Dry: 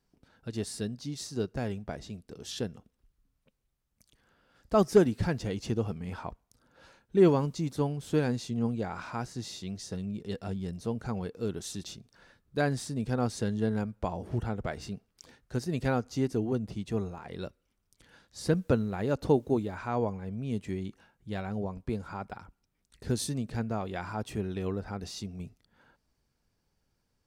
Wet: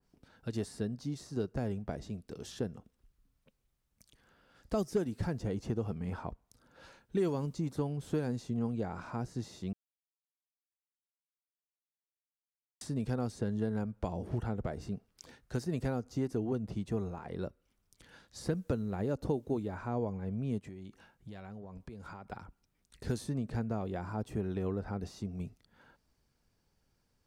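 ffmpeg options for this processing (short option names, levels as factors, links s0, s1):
-filter_complex "[0:a]asplit=3[s0][s1][s2];[s0]afade=t=out:st=20.58:d=0.02[s3];[s1]acompressor=threshold=0.00708:ratio=16:attack=3.2:release=140:knee=1:detection=peak,afade=t=in:st=20.58:d=0.02,afade=t=out:st=22.31:d=0.02[s4];[s2]afade=t=in:st=22.31:d=0.02[s5];[s3][s4][s5]amix=inputs=3:normalize=0,asplit=3[s6][s7][s8];[s6]atrim=end=9.73,asetpts=PTS-STARTPTS,afade=t=out:st=9.726:d=0.004:c=hsin[s9];[s7]atrim=start=9.73:end=12.81,asetpts=PTS-STARTPTS,volume=0[s10];[s8]atrim=start=12.81,asetpts=PTS-STARTPTS,afade=t=in:d=0.004:c=hsin[s11];[s9][s10][s11]concat=n=3:v=0:a=1,acrossover=split=610|1900|5200[s12][s13][s14][s15];[s12]acompressor=threshold=0.0251:ratio=4[s16];[s13]acompressor=threshold=0.00501:ratio=4[s17];[s14]acompressor=threshold=0.00141:ratio=4[s18];[s15]acompressor=threshold=0.00282:ratio=4[s19];[s16][s17][s18][s19]amix=inputs=4:normalize=0,adynamicequalizer=threshold=0.00141:dfrequency=1900:dqfactor=0.7:tfrequency=1900:tqfactor=0.7:attack=5:release=100:ratio=0.375:range=4:mode=cutabove:tftype=highshelf,volume=1.12"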